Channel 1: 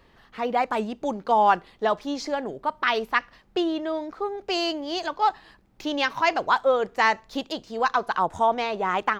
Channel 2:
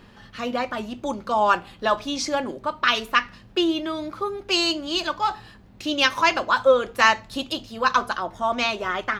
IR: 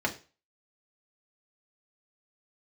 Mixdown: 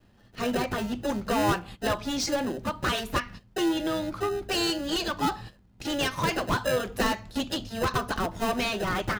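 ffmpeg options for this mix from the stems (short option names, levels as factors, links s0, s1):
-filter_complex "[0:a]highshelf=f=5200:g=-4.5,acrusher=samples=39:mix=1:aa=0.000001,volume=0.398,asplit=2[s0][s1];[1:a]bass=f=250:g=8,treble=f=4000:g=3,acompressor=threshold=0.0794:ratio=2.5,volume=13.3,asoftclip=hard,volume=0.075,adelay=10,volume=0.841[s2];[s1]apad=whole_len=405952[s3];[s2][s3]sidechaingate=range=0.178:threshold=0.00282:ratio=16:detection=peak[s4];[s0][s4]amix=inputs=2:normalize=0"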